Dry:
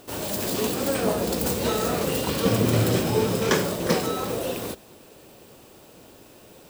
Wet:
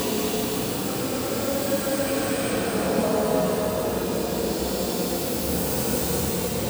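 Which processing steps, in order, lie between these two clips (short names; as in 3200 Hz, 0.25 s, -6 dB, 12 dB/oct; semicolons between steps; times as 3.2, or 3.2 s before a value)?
Paulstretch 7×, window 0.25 s, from 0.63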